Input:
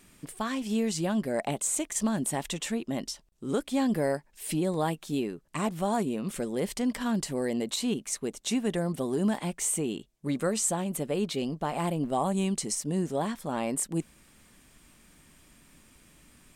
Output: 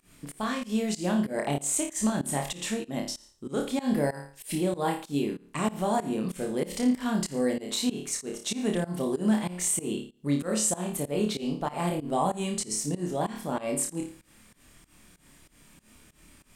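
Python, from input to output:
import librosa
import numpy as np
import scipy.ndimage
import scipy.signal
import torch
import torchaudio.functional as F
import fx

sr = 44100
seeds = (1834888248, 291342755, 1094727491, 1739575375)

y = fx.room_flutter(x, sr, wall_m=4.8, rt60_s=0.4)
y = fx.volume_shaper(y, sr, bpm=95, per_beat=2, depth_db=-21, release_ms=161.0, shape='fast start')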